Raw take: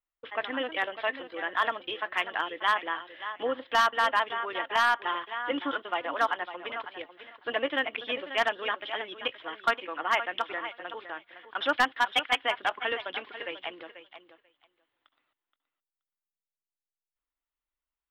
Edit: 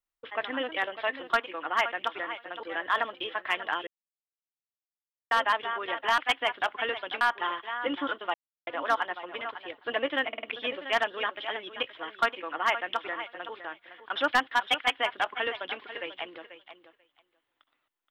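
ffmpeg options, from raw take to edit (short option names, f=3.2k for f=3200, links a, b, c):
-filter_complex "[0:a]asplit=12[a][b][c][d][e][f][g][h][i][j][k][l];[a]atrim=end=1.302[m];[b]atrim=start=9.638:end=10.972[n];[c]atrim=start=1.298:end=2.54,asetpts=PTS-STARTPTS,afade=t=out:st=1.238:d=0.004:c=hsin[o];[d]atrim=start=2.54:end=3.98,asetpts=PTS-STARTPTS,volume=0[p];[e]atrim=start=3.98:end=4.852,asetpts=PTS-STARTPTS,afade=t=in:d=0.004:c=hsin[q];[f]atrim=start=12.208:end=13.242[r];[g]atrim=start=4.848:end=5.98,asetpts=PTS-STARTPTS,afade=t=out:st=1.128:d=0.004:c=hsin,apad=pad_dur=0.33[s];[h]atrim=start=5.98:end=7.082,asetpts=PTS-STARTPTS,afade=t=in:d=0.004:c=hsin[t];[i]atrim=start=7.368:end=7.932[u];[j]atrim=start=7.878:end=7.932[v];[k]atrim=start=7.878:end=7.932[w];[l]atrim=start=7.878[x];[m][n]acrossfade=d=0.004:c1=hsin:c2=hsin[y];[o][p][q]concat=n=3:v=0:a=1[z];[y][z]acrossfade=d=0.004:c1=hsin:c2=hsin[aa];[aa][r]acrossfade=d=0.004:c1=hsin:c2=hsin[ab];[s][t]concat=n=2:v=0:a=1[ac];[ab][ac]acrossfade=d=0.004:c1=hsin:c2=hsin[ad];[ad][u]acrossfade=d=0.004:c1=hsin:c2=hsin[ae];[ae][v]acrossfade=d=0.004:c1=hsin:c2=hsin[af];[af][w]acrossfade=d=0.004:c1=hsin:c2=hsin[ag];[ag][x]acrossfade=d=0.004:c1=hsin:c2=hsin"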